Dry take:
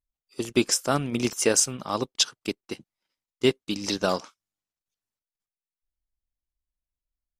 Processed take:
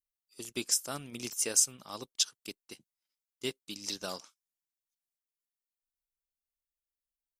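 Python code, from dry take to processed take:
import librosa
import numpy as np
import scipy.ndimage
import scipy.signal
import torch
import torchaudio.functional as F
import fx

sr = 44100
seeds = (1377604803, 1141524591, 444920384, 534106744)

y = scipy.signal.lfilter([1.0, -0.8], [1.0], x)
y = F.gain(torch.from_numpy(y), -2.5).numpy()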